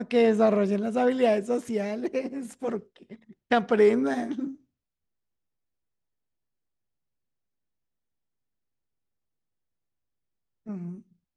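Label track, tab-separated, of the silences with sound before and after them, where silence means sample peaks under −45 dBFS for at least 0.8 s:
4.550000	10.660000	silence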